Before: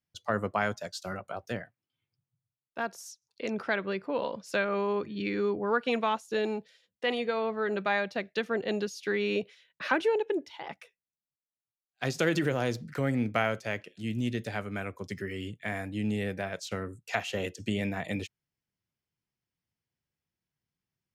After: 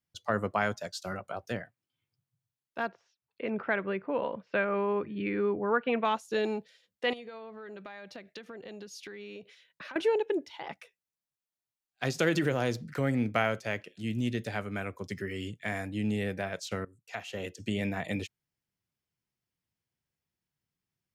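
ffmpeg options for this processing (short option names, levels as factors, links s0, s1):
-filter_complex "[0:a]asettb=1/sr,asplit=3[s0][s1][s2];[s0]atrim=end=2.884[s3];[s1]atrim=start=2.88:end=6.05,asetpts=PTS-STARTPTS,afade=t=in:d=0.004:c=qsin,afade=t=out:st=3.166:d=0.004:c=qsin,lowpass=f=2700:w=0.5412,lowpass=f=2700:w=1.3066[s4];[s2]atrim=start=6.046[s5];[s3][s4]acrossfade=d=0.004:c1=hsin:c2=qsin[s6];[s6][s5]acrossfade=d=0.004:c1=qsin:c2=hsin,asettb=1/sr,asplit=3[s7][s8][s9];[s7]atrim=end=7.134[s10];[s8]atrim=start=7.13:end=9.96,asetpts=PTS-STARTPTS,afade=t=in:d=0.004:c=qsin,afade=t=out:st=2.826:d=0.004:c=qsin,acompressor=threshold=0.00891:ratio=8:attack=3.2:release=140:knee=1:detection=peak[s11];[s9]atrim=start=9.956[s12];[s10][s11]acrossfade=d=0.004:c1=hsin:c2=qsin[s13];[s13][s12]acrossfade=d=0.004:c1=qsin:c2=hsin,asettb=1/sr,asplit=3[s14][s15][s16];[s14]atrim=end=15.354[s17];[s15]atrim=start=15.35:end=15.87,asetpts=PTS-STARTPTS,afade=t=in:d=0.004:c=qsin,afade=t=out:st=0.516:d=0.004:c=qsin,equalizer=f=6000:w=1.5:g=6[s18];[s16]atrim=start=15.866[s19];[s17][s18]acrossfade=d=0.004:c1=hsin:c2=qsin[s20];[s20][s19]acrossfade=d=0.004:c1=qsin:c2=hsin,asplit=2[s21][s22];[s21]atrim=end=16.85,asetpts=PTS-STARTPTS,afade=t=out:st=16.846:d=0.004:c=hsin:silence=0.11885[s23];[s22]atrim=start=16.85,asetpts=PTS-STARTPTS,afade=t=in:d=1.04:silence=0.11885[s24];[s23][s24]concat=n=2:v=0:a=1"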